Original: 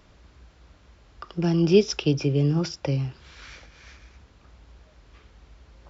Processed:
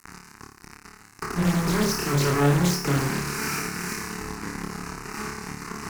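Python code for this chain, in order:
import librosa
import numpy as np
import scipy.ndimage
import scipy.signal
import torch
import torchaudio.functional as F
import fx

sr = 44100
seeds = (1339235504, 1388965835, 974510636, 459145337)

p1 = fx.bin_compress(x, sr, power=0.6)
p2 = scipy.signal.sosfilt(scipy.signal.butter(4, 140.0, 'highpass', fs=sr, output='sos'), p1)
p3 = fx.low_shelf(p2, sr, hz=360.0, db=2.0)
p4 = fx.hum_notches(p3, sr, base_hz=50, count=8)
p5 = p4 + 0.35 * np.pad(p4, (int(4.6 * sr / 1000.0), 0))[:len(p4)]
p6 = fx.rider(p5, sr, range_db=5, speed_s=0.5)
p7 = p5 + F.gain(torch.from_numpy(p6), -1.0).numpy()
p8 = fx.fuzz(p7, sr, gain_db=33.0, gate_db=-28.0)
p9 = fx.fixed_phaser(p8, sr, hz=1400.0, stages=4)
p10 = p9 + fx.room_flutter(p9, sr, wall_m=4.8, rt60_s=0.6, dry=0)
p11 = fx.doppler_dist(p10, sr, depth_ms=0.62)
y = F.gain(torch.from_numpy(p11), -6.5).numpy()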